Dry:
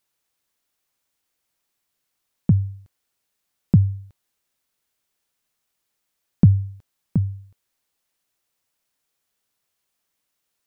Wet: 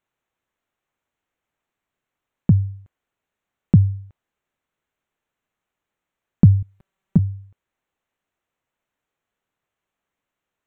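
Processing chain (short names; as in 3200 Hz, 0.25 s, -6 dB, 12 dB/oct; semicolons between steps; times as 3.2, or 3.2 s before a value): Wiener smoothing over 9 samples; 6.62–7.19 comb 5.2 ms, depth 86%; gain +2 dB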